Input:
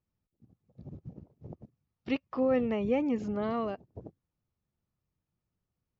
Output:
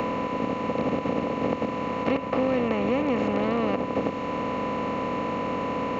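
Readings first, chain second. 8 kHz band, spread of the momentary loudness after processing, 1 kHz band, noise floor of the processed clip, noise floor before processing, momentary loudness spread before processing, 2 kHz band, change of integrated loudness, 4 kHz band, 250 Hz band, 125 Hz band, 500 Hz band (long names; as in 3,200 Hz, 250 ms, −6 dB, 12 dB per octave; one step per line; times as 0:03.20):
can't be measured, 4 LU, +15.0 dB, −31 dBFS, below −85 dBFS, 22 LU, +12.5 dB, +4.0 dB, +12.0 dB, +7.5 dB, +10.5 dB, +8.0 dB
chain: compressor on every frequency bin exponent 0.2
steady tone 1,000 Hz −36 dBFS
multiband upward and downward compressor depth 70%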